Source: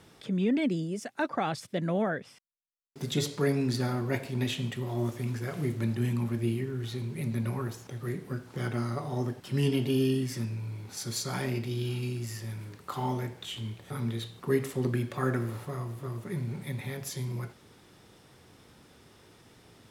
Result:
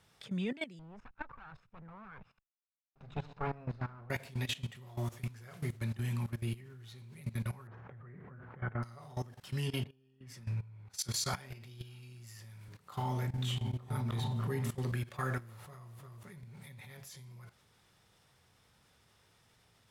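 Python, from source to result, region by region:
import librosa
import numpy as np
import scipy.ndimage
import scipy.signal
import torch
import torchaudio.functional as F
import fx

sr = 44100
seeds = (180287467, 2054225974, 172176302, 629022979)

y = fx.chain(x, sr, fx.lower_of_two(delay_ms=0.76),
    fx.lowpass(hz=1600.0, slope=12), at=(0.79, 4.1))
y = fx.chain(y, sr, fx.lowpass(hz=1900.0, slope=24),
    fx.sustainer(db_per_s=45.0), at=(7.67, 8.83))
y = fx.chain(y, sr, fx.high_shelf(hz=11000.0, db=-4.0),
    fx.over_compress(threshold_db=-33.0, ratio=-0.5),
    fx.band_widen(depth_pct=100), at=(9.84, 11.34))
y = fx.chain(y, sr, fx.highpass(hz=120.0, slope=12),
    fx.low_shelf(hz=430.0, db=7.5),
    fx.echo_opening(ms=301, hz=200, octaves=1, feedback_pct=70, wet_db=0), at=(12.68, 14.75))
y = fx.peak_eq(y, sr, hz=310.0, db=-12.0, octaves=1.3)
y = fx.level_steps(y, sr, step_db=17)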